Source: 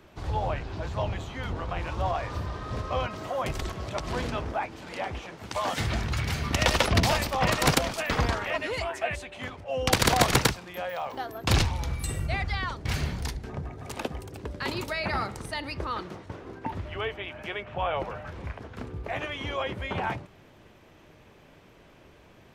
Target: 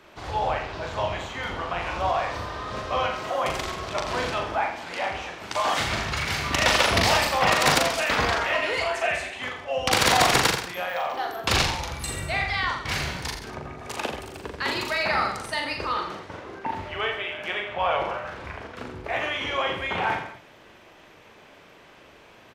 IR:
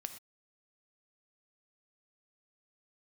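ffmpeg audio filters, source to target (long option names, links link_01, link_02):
-filter_complex "[0:a]asplit=2[link_01][link_02];[link_02]highpass=frequency=720:poles=1,volume=13dB,asoftclip=type=tanh:threshold=-6dB[link_03];[link_01][link_03]amix=inputs=2:normalize=0,lowpass=frequency=6600:poles=1,volume=-6dB,aecho=1:1:40|84|132.4|185.6|244.2:0.631|0.398|0.251|0.158|0.1,volume=-2.5dB"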